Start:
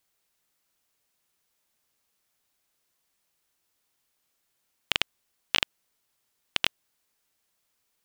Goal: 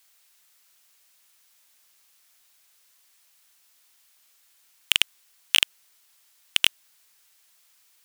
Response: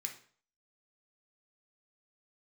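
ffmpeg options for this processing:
-af "tiltshelf=f=690:g=-8.5,acontrast=77,volume=0.891"

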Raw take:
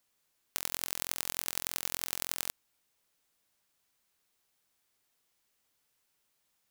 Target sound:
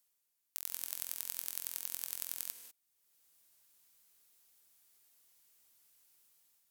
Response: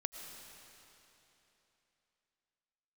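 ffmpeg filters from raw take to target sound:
-filter_complex "[0:a]crystalizer=i=2:c=0,dynaudnorm=f=200:g=5:m=2.11[s0];[1:a]atrim=start_sample=2205,afade=t=out:st=0.2:d=0.01,atrim=end_sample=9261,asetrate=32634,aresample=44100[s1];[s0][s1]afir=irnorm=-1:irlink=0,volume=0.422"

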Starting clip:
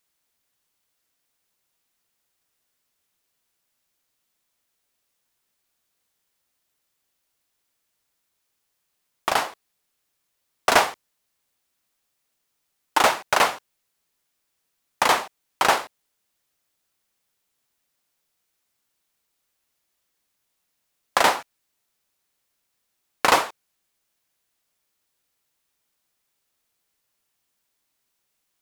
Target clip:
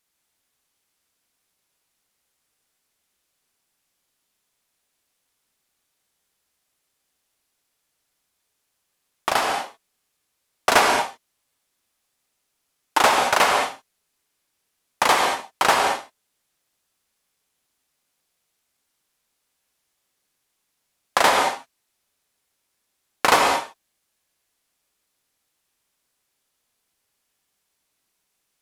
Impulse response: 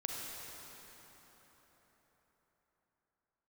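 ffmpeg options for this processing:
-filter_complex "[1:a]atrim=start_sample=2205,afade=t=out:st=0.18:d=0.01,atrim=end_sample=8379,asetrate=25578,aresample=44100[s0];[0:a][s0]afir=irnorm=-1:irlink=0"

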